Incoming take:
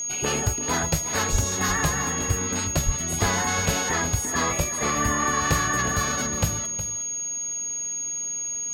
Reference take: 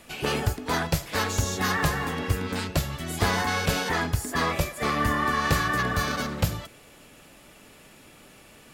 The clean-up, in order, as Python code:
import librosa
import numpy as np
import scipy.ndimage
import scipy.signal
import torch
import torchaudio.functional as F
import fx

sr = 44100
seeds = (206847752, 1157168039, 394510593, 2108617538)

y = fx.notch(x, sr, hz=6600.0, q=30.0)
y = fx.fix_deplosive(y, sr, at_s=(1.31, 2.85))
y = fx.fix_echo_inverse(y, sr, delay_ms=364, level_db=-12.0)